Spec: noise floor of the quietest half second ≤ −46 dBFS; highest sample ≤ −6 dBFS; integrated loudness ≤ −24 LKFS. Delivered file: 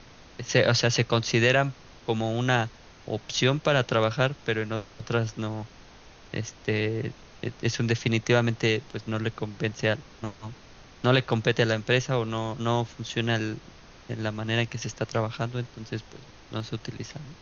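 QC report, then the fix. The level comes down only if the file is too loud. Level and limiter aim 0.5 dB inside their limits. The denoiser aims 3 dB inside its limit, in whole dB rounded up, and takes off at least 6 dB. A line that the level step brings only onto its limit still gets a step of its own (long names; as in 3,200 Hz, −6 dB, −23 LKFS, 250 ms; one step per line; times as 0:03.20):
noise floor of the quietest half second −50 dBFS: in spec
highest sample −7.5 dBFS: in spec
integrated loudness −27.0 LKFS: in spec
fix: no processing needed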